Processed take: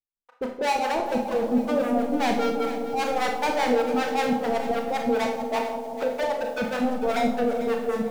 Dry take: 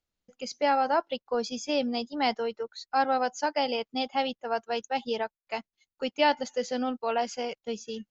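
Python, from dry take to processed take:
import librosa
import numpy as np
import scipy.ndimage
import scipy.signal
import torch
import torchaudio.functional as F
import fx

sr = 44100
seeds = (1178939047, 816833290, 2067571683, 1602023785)

p1 = fx.noise_reduce_blind(x, sr, reduce_db=7)
p2 = fx.highpass(p1, sr, hz=410.0, slope=24, at=(6.03, 6.58))
p3 = fx.dereverb_blind(p2, sr, rt60_s=0.96)
p4 = scipy.signal.sosfilt(scipy.signal.butter(4, 1300.0, 'lowpass', fs=sr, output='sos'), p3)
p5 = fx.over_compress(p4, sr, threshold_db=-30.0, ratio=-1.0)
p6 = p4 + (p5 * 10.0 ** (1.0 / 20.0))
p7 = fx.leveller(p6, sr, passes=5)
p8 = fx.harmonic_tremolo(p7, sr, hz=5.1, depth_pct=100, crossover_hz=690.0)
p9 = p8 + fx.echo_bbd(p8, sr, ms=171, stages=1024, feedback_pct=75, wet_db=-7, dry=0)
p10 = fx.rev_schroeder(p9, sr, rt60_s=0.51, comb_ms=25, drr_db=3.0)
p11 = fx.echo_crushed(p10, sr, ms=447, feedback_pct=35, bits=6, wet_db=-12.5)
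y = p11 * 10.0 ** (-5.0 / 20.0)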